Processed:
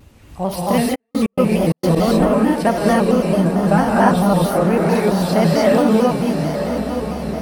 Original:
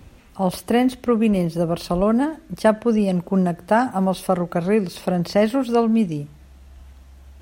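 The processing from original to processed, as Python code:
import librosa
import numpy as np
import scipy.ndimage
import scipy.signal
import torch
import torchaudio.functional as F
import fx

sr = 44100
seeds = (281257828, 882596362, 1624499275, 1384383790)

y = fx.low_shelf(x, sr, hz=140.0, db=11.0, at=(3.58, 4.17))
y = fx.echo_diffused(y, sr, ms=974, feedback_pct=56, wet_db=-8.0)
y = fx.rev_gated(y, sr, seeds[0], gate_ms=330, shape='rising', drr_db=-5.0)
y = fx.step_gate(y, sr, bpm=131, pattern='.x.xxx.x.', floor_db=-60.0, edge_ms=4.5, at=(0.94, 1.95), fade=0.02)
y = fx.high_shelf(y, sr, hz=6500.0, db=4.0)
y = fx.vibrato_shape(y, sr, shape='square', rate_hz=4.5, depth_cents=100.0)
y = y * 10.0 ** (-1.5 / 20.0)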